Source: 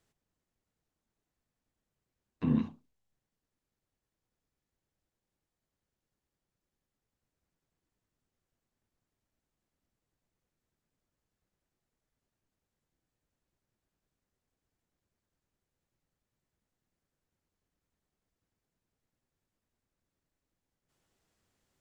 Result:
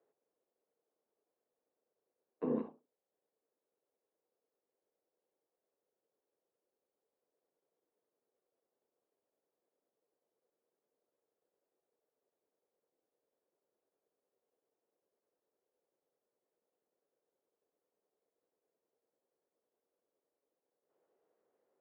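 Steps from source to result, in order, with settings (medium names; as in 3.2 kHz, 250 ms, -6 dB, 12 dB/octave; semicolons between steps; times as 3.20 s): ladder band-pass 530 Hz, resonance 55%; trim +13 dB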